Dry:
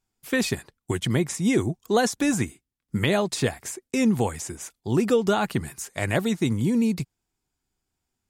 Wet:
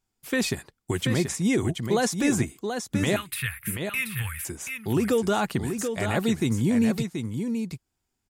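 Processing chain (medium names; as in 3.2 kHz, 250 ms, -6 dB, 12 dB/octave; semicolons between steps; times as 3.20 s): 3.16–4.45 s: FFT filter 110 Hz 0 dB, 300 Hz -29 dB, 730 Hz -26 dB, 1.3 kHz +2 dB, 2.6 kHz +7 dB, 4.7 kHz -12 dB, 6.8 kHz -18 dB, 11 kHz +12 dB; peak limiter -15 dBFS, peak gain reduction 6 dB; delay 731 ms -6.5 dB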